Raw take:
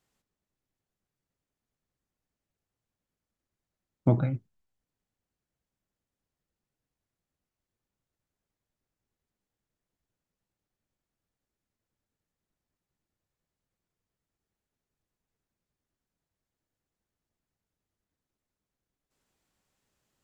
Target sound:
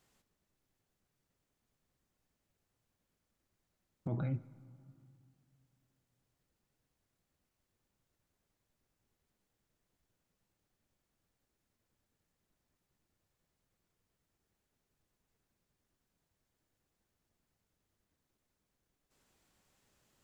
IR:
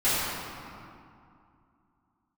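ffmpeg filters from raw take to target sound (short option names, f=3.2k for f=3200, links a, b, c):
-filter_complex "[0:a]acompressor=threshold=-32dB:ratio=5,alimiter=level_in=8.5dB:limit=-24dB:level=0:latency=1,volume=-8.5dB,asplit=2[a][b];[1:a]atrim=start_sample=2205[c];[b][c]afir=irnorm=-1:irlink=0,volume=-33.5dB[d];[a][d]amix=inputs=2:normalize=0,volume=4.5dB"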